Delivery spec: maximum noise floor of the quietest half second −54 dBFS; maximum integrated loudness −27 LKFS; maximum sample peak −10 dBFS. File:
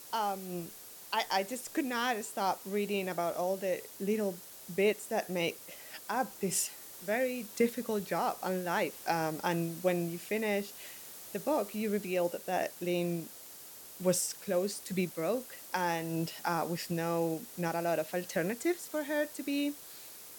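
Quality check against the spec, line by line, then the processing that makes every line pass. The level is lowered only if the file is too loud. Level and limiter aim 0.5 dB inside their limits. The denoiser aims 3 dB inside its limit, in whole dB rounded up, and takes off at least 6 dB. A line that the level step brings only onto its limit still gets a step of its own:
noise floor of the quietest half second −50 dBFS: out of spec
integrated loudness −33.5 LKFS: in spec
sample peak −15.0 dBFS: in spec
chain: broadband denoise 7 dB, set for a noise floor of −50 dBFS

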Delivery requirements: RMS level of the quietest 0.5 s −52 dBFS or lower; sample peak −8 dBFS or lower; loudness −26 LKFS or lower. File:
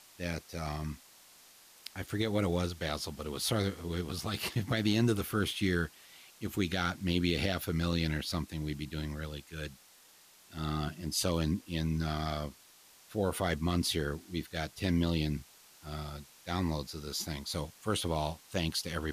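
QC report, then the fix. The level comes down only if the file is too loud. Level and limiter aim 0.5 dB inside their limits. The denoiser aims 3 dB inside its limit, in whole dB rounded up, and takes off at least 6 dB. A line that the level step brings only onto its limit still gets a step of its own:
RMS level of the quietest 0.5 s −60 dBFS: in spec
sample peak −17.5 dBFS: in spec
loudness −34.0 LKFS: in spec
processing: no processing needed

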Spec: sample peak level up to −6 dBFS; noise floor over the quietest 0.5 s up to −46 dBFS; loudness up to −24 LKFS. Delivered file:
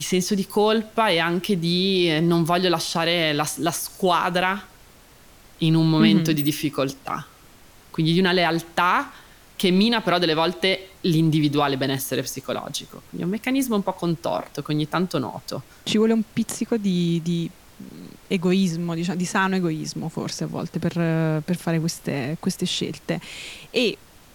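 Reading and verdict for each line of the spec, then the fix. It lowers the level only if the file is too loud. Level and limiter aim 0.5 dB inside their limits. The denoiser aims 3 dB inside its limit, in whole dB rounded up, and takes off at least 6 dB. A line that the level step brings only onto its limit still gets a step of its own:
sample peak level −4.5 dBFS: out of spec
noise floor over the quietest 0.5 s −50 dBFS: in spec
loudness −22.5 LKFS: out of spec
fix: level −2 dB

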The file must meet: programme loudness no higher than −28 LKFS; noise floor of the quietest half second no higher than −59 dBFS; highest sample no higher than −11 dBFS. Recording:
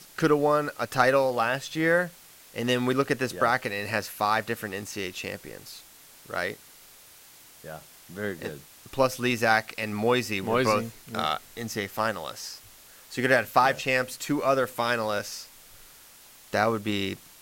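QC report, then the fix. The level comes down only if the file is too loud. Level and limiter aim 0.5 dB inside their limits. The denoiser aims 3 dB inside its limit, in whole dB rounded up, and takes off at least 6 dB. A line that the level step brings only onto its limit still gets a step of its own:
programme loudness −26.5 LKFS: out of spec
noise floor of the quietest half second −52 dBFS: out of spec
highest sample −6.5 dBFS: out of spec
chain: broadband denoise 8 dB, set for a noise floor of −52 dBFS
level −2 dB
brickwall limiter −11.5 dBFS

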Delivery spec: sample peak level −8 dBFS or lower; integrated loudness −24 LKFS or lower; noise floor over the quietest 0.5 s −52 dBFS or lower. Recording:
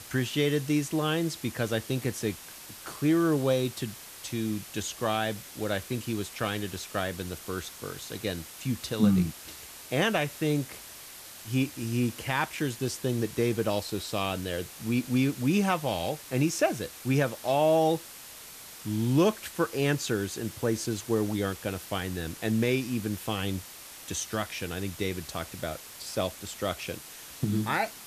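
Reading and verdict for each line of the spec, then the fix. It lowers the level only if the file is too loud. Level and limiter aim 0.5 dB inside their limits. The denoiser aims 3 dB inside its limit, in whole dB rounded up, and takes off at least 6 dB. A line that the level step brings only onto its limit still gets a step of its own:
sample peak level −11.5 dBFS: in spec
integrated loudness −29.5 LKFS: in spec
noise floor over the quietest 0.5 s −46 dBFS: out of spec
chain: broadband denoise 9 dB, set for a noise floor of −46 dBFS

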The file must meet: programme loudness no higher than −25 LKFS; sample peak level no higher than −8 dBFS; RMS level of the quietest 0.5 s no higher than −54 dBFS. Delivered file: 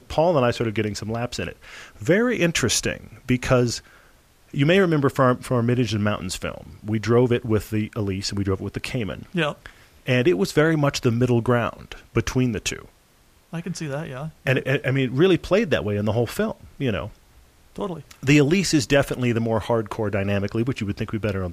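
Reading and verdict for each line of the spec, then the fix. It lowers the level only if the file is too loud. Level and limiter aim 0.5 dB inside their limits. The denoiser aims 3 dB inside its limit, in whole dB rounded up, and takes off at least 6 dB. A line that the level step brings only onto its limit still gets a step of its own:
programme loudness −22.5 LKFS: out of spec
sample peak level −6.0 dBFS: out of spec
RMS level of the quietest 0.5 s −57 dBFS: in spec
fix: level −3 dB

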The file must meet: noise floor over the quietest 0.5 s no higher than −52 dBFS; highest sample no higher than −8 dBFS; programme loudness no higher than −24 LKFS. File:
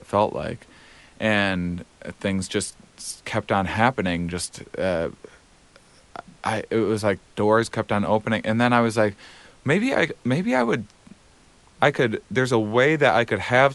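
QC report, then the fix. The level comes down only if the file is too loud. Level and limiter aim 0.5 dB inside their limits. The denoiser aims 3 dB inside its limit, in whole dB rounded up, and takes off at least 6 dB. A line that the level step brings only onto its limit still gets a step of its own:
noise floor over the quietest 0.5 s −54 dBFS: in spec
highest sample −4.0 dBFS: out of spec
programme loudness −23.0 LKFS: out of spec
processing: level −1.5 dB
brickwall limiter −8.5 dBFS

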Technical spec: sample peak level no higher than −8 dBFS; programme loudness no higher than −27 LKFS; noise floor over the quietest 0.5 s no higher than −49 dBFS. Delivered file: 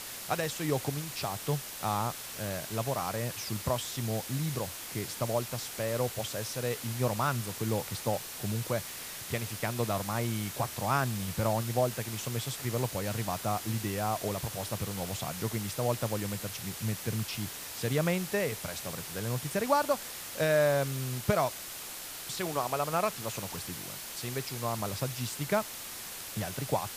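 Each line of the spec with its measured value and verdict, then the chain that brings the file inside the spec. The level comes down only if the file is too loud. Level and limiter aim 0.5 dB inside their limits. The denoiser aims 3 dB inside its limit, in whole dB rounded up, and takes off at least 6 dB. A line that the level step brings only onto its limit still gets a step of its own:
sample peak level −13.5 dBFS: in spec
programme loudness −32.5 LKFS: in spec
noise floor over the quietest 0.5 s −42 dBFS: out of spec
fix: broadband denoise 10 dB, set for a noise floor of −42 dBFS

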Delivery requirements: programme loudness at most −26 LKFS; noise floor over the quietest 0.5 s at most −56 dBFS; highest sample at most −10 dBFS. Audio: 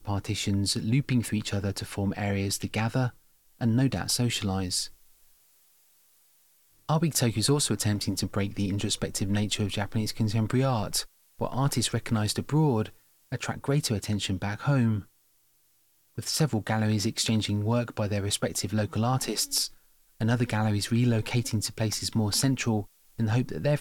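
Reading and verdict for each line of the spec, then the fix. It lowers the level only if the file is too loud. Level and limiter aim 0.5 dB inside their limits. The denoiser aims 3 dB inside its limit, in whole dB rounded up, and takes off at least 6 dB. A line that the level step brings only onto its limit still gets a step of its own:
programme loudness −28.0 LKFS: in spec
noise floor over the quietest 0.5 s −66 dBFS: in spec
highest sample −12.0 dBFS: in spec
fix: no processing needed

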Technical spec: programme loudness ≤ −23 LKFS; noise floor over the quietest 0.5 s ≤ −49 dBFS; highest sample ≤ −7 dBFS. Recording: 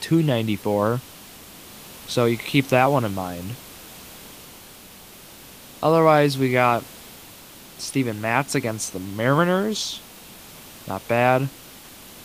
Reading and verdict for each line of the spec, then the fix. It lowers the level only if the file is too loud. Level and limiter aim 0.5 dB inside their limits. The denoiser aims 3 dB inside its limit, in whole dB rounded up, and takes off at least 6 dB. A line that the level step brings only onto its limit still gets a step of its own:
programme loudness −21.5 LKFS: out of spec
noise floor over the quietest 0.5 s −44 dBFS: out of spec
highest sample −3.0 dBFS: out of spec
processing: broadband denoise 6 dB, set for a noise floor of −44 dBFS
level −2 dB
brickwall limiter −7.5 dBFS

